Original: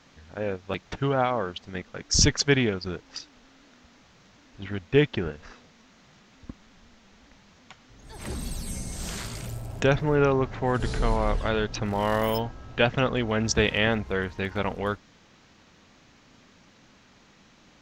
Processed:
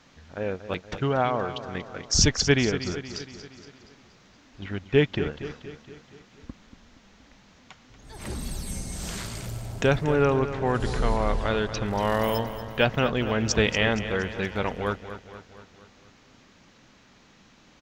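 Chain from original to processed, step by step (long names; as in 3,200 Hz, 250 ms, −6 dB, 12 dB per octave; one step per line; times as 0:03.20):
repeating echo 235 ms, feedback 55%, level −12 dB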